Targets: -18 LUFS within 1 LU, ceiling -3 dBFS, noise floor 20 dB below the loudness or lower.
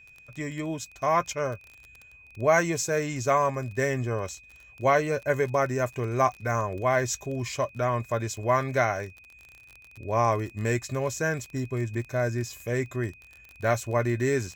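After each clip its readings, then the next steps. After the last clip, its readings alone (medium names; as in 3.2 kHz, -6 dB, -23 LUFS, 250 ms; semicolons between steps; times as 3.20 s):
tick rate 29 per s; steady tone 2.5 kHz; tone level -50 dBFS; loudness -27.5 LUFS; peak level -10.0 dBFS; loudness target -18.0 LUFS
-> de-click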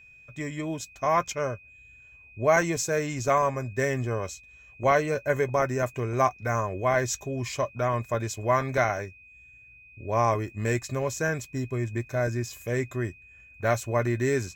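tick rate 0.27 per s; steady tone 2.5 kHz; tone level -50 dBFS
-> band-stop 2.5 kHz, Q 30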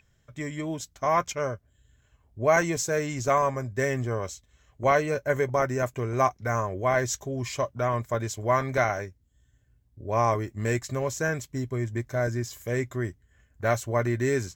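steady tone not found; loudness -27.5 LUFS; peak level -10.0 dBFS; loudness target -18.0 LUFS
-> trim +9.5 dB; peak limiter -3 dBFS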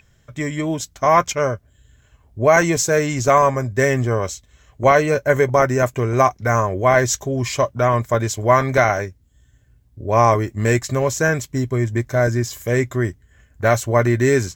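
loudness -18.5 LUFS; peak level -3.0 dBFS; noise floor -56 dBFS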